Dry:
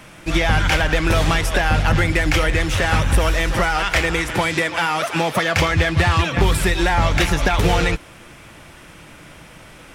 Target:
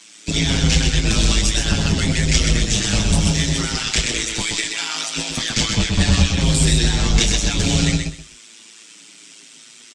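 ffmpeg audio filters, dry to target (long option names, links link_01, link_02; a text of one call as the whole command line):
ffmpeg -i in.wav -filter_complex "[0:a]firequalizer=gain_entry='entry(140,0);entry(510,-18);entry(3700,6);entry(7700,12);entry(12000,-16)':delay=0.05:min_phase=1,tremolo=f=110:d=0.947,acrossover=split=260|560|3000[link_01][link_02][link_03][link_04];[link_01]acrusher=bits=3:mix=0:aa=0.5[link_05];[link_05][link_02][link_03][link_04]amix=inputs=4:normalize=0,asplit=2[link_06][link_07];[link_07]adelay=25,volume=-11dB[link_08];[link_06][link_08]amix=inputs=2:normalize=0,aecho=1:1:127|254|381:0.562|0.124|0.0272,asplit=2[link_09][link_10];[link_10]adelay=6.5,afreqshift=-0.68[link_11];[link_09][link_11]amix=inputs=2:normalize=1,volume=6.5dB" out.wav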